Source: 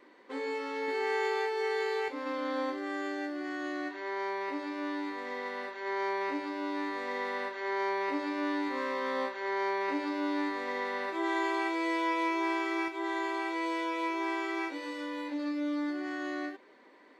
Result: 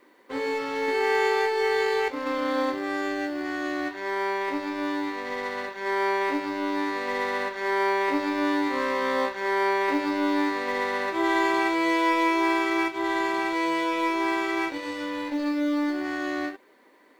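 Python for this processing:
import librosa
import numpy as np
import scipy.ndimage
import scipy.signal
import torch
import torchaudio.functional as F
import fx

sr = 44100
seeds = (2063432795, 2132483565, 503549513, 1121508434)

y = fx.law_mismatch(x, sr, coded='A')
y = y * 10.0 ** (9.0 / 20.0)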